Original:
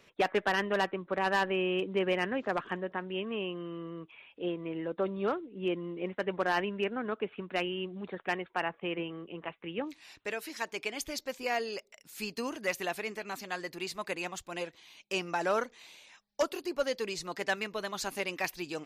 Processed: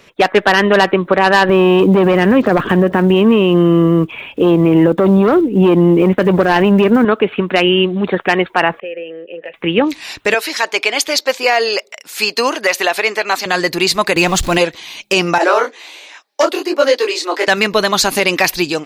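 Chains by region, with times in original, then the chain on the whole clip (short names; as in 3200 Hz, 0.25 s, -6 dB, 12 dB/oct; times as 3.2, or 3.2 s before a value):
1.49–7.05 block floating point 7-bit + low shelf 440 Hz +10.5 dB + core saturation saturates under 530 Hz
8.8–9.54 vowel filter e + compressor 4:1, threshold -47 dBFS + mismatched tape noise reduction encoder only
10.34–13.46 HPF 480 Hz + high shelf 7000 Hz -8 dB
14.16–14.58 zero-crossing step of -49.5 dBFS + low shelf 180 Hz +11.5 dB
15.38–17.48 steep high-pass 270 Hz 72 dB/oct + high shelf 4700 Hz -6.5 dB + detuned doubles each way 47 cents
whole clip: AGC gain up to 9 dB; dynamic EQ 4200 Hz, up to +4 dB, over -48 dBFS, Q 3; maximiser +16 dB; gain -1 dB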